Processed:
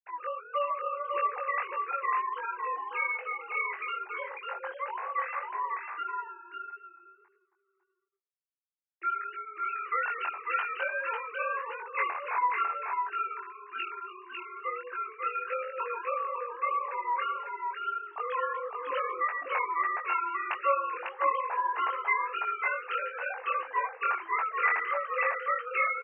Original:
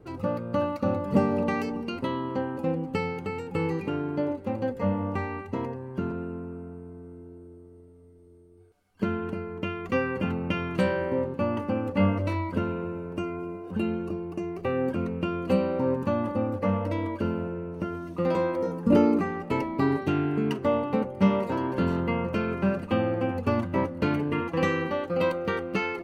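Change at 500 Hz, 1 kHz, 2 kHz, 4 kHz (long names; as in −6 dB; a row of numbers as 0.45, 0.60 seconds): −10.5, +4.5, +4.5, −6.0 decibels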